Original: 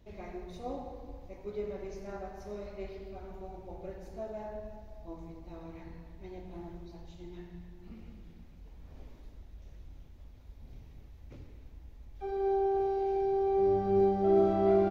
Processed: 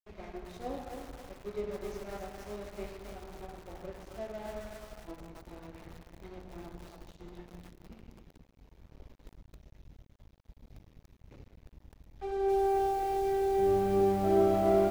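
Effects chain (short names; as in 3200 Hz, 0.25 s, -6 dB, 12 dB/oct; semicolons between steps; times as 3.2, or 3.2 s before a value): crossover distortion -50.5 dBFS; lo-fi delay 0.268 s, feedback 55%, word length 8-bit, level -5 dB; gain +1.5 dB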